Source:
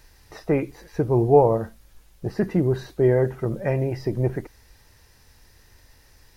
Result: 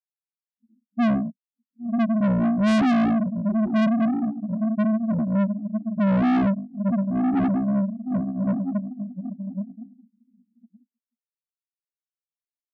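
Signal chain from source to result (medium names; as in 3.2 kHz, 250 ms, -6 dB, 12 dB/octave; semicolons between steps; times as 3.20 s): companding laws mixed up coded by mu; low-pass that closes with the level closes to 1.6 kHz, closed at -18.5 dBFS; treble shelf 2.9 kHz +9.5 dB; on a send: echo that smears into a reverb 517 ms, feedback 41%, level -6.5 dB; on the sum: bit crusher 5-bit; resonant high-pass 460 Hz, resonance Q 4.9; loudest bins only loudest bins 4; saturation -23 dBFS, distortion -1 dB; speed mistake 15 ips tape played at 7.5 ips; upward expansion 2.5:1, over -39 dBFS; trim +5.5 dB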